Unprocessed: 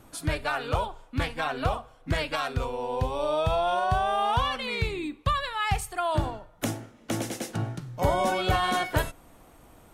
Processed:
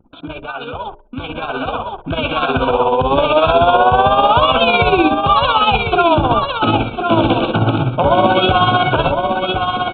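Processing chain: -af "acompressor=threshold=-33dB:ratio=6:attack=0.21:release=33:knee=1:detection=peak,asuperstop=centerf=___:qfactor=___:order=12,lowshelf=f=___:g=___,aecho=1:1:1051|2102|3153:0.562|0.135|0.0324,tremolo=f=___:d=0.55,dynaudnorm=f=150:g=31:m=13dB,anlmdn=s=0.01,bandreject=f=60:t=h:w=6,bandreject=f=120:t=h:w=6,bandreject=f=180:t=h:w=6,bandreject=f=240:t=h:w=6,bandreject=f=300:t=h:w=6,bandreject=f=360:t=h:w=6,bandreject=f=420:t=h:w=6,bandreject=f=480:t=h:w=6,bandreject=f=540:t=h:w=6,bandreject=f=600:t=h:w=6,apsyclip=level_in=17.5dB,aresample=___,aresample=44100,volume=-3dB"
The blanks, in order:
1900, 2.7, 71, -11.5, 16, 8000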